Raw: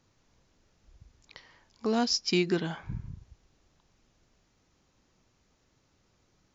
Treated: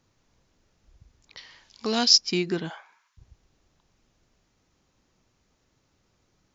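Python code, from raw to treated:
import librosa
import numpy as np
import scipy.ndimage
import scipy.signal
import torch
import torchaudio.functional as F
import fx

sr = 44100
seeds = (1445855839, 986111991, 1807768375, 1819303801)

y = fx.peak_eq(x, sr, hz=4000.0, db=13.5, octaves=2.2, at=(1.37, 2.18))
y = fx.highpass(y, sr, hz=fx.line((2.68, 460.0), (3.17, 1200.0)), slope=24, at=(2.68, 3.17), fade=0.02)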